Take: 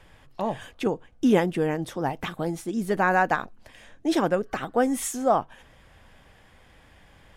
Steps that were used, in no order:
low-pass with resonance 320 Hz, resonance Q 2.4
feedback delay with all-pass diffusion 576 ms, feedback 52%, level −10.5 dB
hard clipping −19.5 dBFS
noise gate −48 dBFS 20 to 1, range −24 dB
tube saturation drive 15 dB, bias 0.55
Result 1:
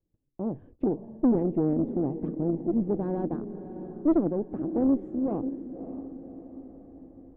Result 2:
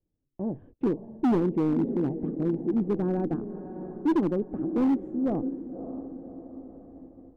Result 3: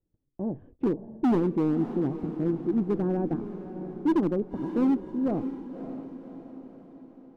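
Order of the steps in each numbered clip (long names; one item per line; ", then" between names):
hard clipping, then feedback delay with all-pass diffusion, then noise gate, then low-pass with resonance, then tube saturation
feedback delay with all-pass diffusion, then tube saturation, then noise gate, then low-pass with resonance, then hard clipping
noise gate, then tube saturation, then low-pass with resonance, then hard clipping, then feedback delay with all-pass diffusion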